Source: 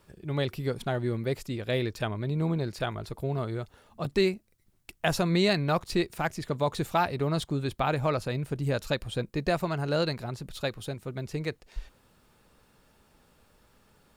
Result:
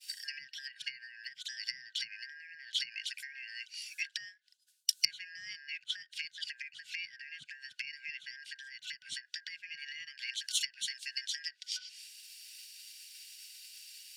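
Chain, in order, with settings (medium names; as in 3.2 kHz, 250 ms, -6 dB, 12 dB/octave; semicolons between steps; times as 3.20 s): four frequency bands reordered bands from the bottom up 3142; tilt EQ +3.5 dB/octave; low-pass that closes with the level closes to 880 Hz, closed at -21.5 dBFS; frequency weighting A; expander -52 dBFS; compression 2.5:1, threshold -40 dBFS, peak gain reduction 12.5 dB; saturation -18.5 dBFS, distortion -35 dB; elliptic band-stop 140–3200 Hz, stop band 60 dB; trim +15 dB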